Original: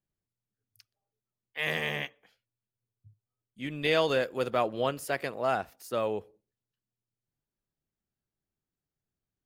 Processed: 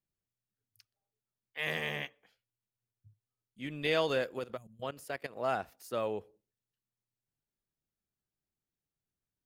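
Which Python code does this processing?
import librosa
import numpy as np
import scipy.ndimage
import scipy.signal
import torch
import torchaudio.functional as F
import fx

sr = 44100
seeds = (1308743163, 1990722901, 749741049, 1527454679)

y = fx.level_steps(x, sr, step_db=16, at=(4.39, 5.36))
y = fx.spec_box(y, sr, start_s=4.57, length_s=0.25, low_hz=220.0, high_hz=6100.0, gain_db=-28)
y = F.gain(torch.from_numpy(y), -4.0).numpy()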